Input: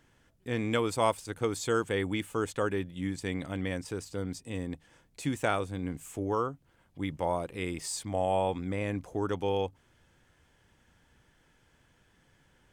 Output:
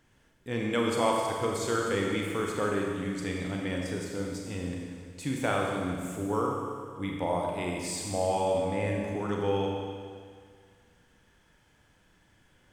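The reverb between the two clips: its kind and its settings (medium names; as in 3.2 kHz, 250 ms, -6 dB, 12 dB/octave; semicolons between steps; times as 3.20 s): Schroeder reverb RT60 2 s, combs from 30 ms, DRR -1 dB; trim -1.5 dB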